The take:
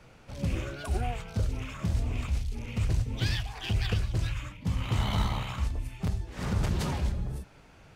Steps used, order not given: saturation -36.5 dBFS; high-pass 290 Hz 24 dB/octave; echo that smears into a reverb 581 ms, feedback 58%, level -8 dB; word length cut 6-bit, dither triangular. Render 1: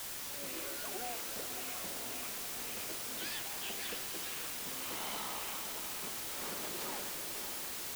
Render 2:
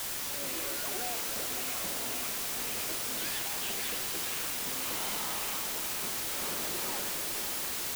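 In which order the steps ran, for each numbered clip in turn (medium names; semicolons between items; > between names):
high-pass > word length cut > saturation > echo that smears into a reverb; high-pass > saturation > word length cut > echo that smears into a reverb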